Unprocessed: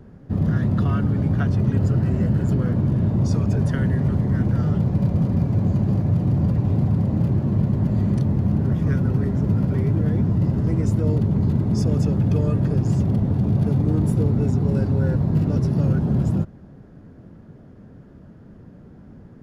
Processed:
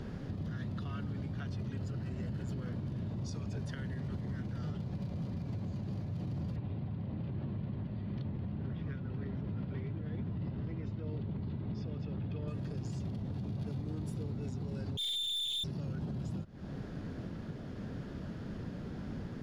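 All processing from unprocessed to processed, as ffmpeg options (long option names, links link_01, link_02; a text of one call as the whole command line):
ffmpeg -i in.wav -filter_complex "[0:a]asettb=1/sr,asplit=3[link_01][link_02][link_03];[link_01]atrim=end=6.564[link_04];[link_02]atrim=start=6.56:end=12.48,asetpts=PTS-STARTPTS,afade=type=in:duration=0.004:curve=qsin,afade=type=out:start_time=5.916:duration=0.004:curve=qsin,tremolo=f=1:d=0.86,lowpass=frequency=3700:width=0.5412,lowpass=frequency=3700:width=1.3066[link_05];[link_03]atrim=start=12.476[link_06];[link_04][link_05]acrossfade=duration=0.004:curve1=hsin:curve2=qsin[link_07];[link_07][link_06]acrossfade=duration=0.004:curve1=qsin:curve2=hsin,asettb=1/sr,asplit=3[link_08][link_09][link_10];[link_08]atrim=end=14.974[link_11];[link_09]atrim=start=14.97:end=15.64,asetpts=PTS-STARTPTS,afade=type=in:duration=0.004:curve=qsin,afade=type=out:start_time=0.666:duration=0.004:curve=qsin,lowpass=frequency=3100:width_type=q:width=0.5098,lowpass=frequency=3100:width_type=q:width=0.6013,lowpass=frequency=3100:width_type=q:width=0.9,lowpass=frequency=3100:width_type=q:width=2.563,afreqshift=-3700,aeval=exprs='(tanh(31.6*val(0)+0.7)-tanh(0.7))/31.6':channel_layout=same[link_12];[link_10]atrim=start=15.636[link_13];[link_11][link_12]acrossfade=duration=0.004:curve1=hsin:curve2=qsin[link_14];[link_14][link_13]acrossfade=duration=0.004:curve1=qsin:curve2=hsin,equalizer=frequency=3900:width=0.64:gain=12,acompressor=threshold=-28dB:ratio=5,alimiter=level_in=9.5dB:limit=-24dB:level=0:latency=1:release=334,volume=-9.5dB,volume=2.5dB" out.wav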